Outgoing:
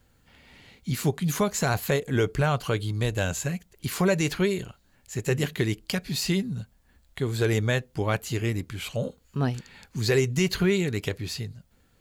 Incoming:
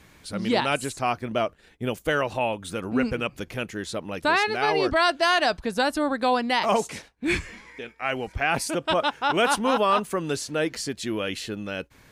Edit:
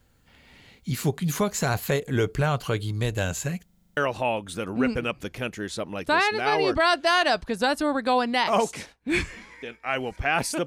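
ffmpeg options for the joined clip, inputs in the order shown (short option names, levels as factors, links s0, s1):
-filter_complex "[0:a]apad=whole_dur=10.66,atrim=end=10.66,asplit=8[s0][s1][s2][s3][s4][s5][s6][s7];[s0]atrim=end=3.692[s8];[s1]atrim=start=3.648:end=3.692[s9];[s2]atrim=start=3.648:end=3.692[s10];[s3]atrim=start=3.648:end=3.692[s11];[s4]atrim=start=3.648:end=3.692[s12];[s5]atrim=start=3.648:end=3.692[s13];[s6]atrim=start=3.648:end=3.692[s14];[s7]atrim=start=3.648:end=3.692[s15];[1:a]atrim=start=2.128:end=8.82[s16];[s8][s9]acrossfade=d=0.004:c1=hsin:c2=hsin[s17];[s17][s10]acrossfade=d=0.004:c1=hsin:c2=hsin[s18];[s18][s11]acrossfade=d=0.004:c1=hsin:c2=hsin[s19];[s19][s12]acrossfade=d=0.004:c1=hsin:c2=hsin[s20];[s20][s13]acrossfade=d=0.004:c1=hsin:c2=hsin[s21];[s21][s14]acrossfade=d=0.004:c1=hsin:c2=hsin[s22];[s22][s15]acrossfade=d=0.004:c1=hsin:c2=hsin[s23];[s23][s16]acrossfade=d=0.004:c1=hsin:c2=hsin"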